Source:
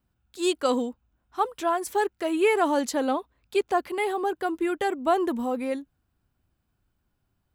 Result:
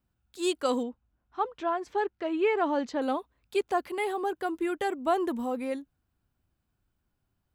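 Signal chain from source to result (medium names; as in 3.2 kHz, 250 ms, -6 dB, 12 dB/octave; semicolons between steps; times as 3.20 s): 0.83–3.02 s: distance through air 180 m; trim -3.5 dB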